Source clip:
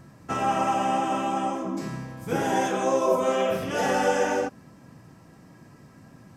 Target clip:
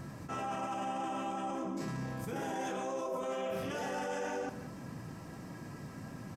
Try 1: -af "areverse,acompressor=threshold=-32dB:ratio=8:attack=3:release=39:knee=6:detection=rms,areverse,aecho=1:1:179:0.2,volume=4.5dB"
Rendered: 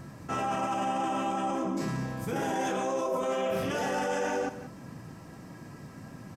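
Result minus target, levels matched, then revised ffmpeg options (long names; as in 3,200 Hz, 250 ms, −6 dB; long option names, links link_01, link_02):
downward compressor: peak gain reduction −7 dB
-af "areverse,acompressor=threshold=-40dB:ratio=8:attack=3:release=39:knee=6:detection=rms,areverse,aecho=1:1:179:0.2,volume=4.5dB"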